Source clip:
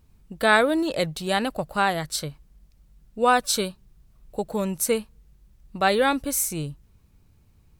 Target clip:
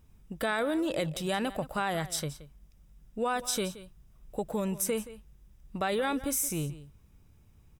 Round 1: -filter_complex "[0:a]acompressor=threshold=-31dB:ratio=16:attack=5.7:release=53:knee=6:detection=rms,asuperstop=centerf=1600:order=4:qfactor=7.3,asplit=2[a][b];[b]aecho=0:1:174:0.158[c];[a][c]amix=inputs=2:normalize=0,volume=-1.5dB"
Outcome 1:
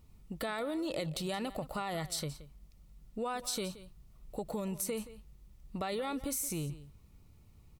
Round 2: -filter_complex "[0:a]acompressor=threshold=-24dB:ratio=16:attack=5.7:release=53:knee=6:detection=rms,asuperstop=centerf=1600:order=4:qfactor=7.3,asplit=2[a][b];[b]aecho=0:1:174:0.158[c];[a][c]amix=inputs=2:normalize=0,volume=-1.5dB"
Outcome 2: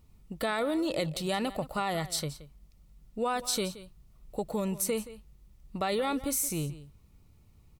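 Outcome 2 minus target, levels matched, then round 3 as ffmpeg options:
2000 Hz band -2.5 dB
-filter_complex "[0:a]acompressor=threshold=-24dB:ratio=16:attack=5.7:release=53:knee=6:detection=rms,asuperstop=centerf=4300:order=4:qfactor=7.3,asplit=2[a][b];[b]aecho=0:1:174:0.158[c];[a][c]amix=inputs=2:normalize=0,volume=-1.5dB"

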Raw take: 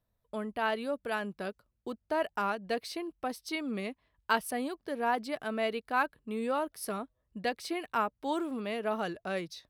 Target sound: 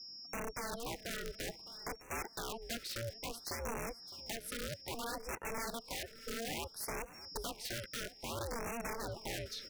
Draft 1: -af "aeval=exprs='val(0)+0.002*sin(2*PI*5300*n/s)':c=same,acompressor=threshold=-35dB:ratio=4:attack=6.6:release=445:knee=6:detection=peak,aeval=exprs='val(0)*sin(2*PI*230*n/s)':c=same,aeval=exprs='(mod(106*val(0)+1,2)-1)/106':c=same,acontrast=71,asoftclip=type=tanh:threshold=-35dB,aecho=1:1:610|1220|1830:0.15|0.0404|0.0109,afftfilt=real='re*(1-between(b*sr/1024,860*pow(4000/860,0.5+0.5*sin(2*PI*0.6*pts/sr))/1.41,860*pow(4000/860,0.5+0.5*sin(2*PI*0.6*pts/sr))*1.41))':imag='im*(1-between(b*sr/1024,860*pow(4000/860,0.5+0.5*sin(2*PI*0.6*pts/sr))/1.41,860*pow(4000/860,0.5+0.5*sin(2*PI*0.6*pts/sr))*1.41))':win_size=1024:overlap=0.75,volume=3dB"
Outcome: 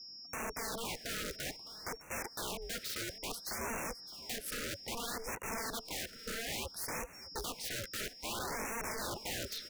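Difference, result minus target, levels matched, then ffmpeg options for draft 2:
compressor: peak gain reduction -5 dB
-af "aeval=exprs='val(0)+0.002*sin(2*PI*5300*n/s)':c=same,acompressor=threshold=-42dB:ratio=4:attack=6.6:release=445:knee=6:detection=peak,aeval=exprs='val(0)*sin(2*PI*230*n/s)':c=same,aeval=exprs='(mod(106*val(0)+1,2)-1)/106':c=same,acontrast=71,asoftclip=type=tanh:threshold=-35dB,aecho=1:1:610|1220|1830:0.15|0.0404|0.0109,afftfilt=real='re*(1-between(b*sr/1024,860*pow(4000/860,0.5+0.5*sin(2*PI*0.6*pts/sr))/1.41,860*pow(4000/860,0.5+0.5*sin(2*PI*0.6*pts/sr))*1.41))':imag='im*(1-between(b*sr/1024,860*pow(4000/860,0.5+0.5*sin(2*PI*0.6*pts/sr))/1.41,860*pow(4000/860,0.5+0.5*sin(2*PI*0.6*pts/sr))*1.41))':win_size=1024:overlap=0.75,volume=3dB"

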